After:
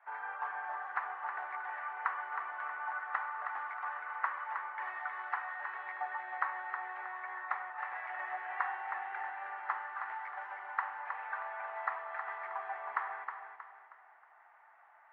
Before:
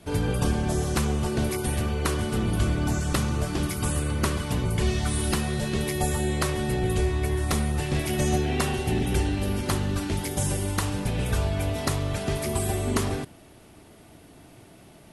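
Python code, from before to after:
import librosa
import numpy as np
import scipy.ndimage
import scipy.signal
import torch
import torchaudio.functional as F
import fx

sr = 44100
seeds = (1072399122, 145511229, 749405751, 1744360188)

y = scipy.signal.sosfilt(scipy.signal.ellip(3, 1.0, 80, [810.0, 1900.0], 'bandpass', fs=sr, output='sos'), x)
y = fx.echo_feedback(y, sr, ms=316, feedback_pct=39, wet_db=-7.0)
y = y * librosa.db_to_amplitude(-1.0)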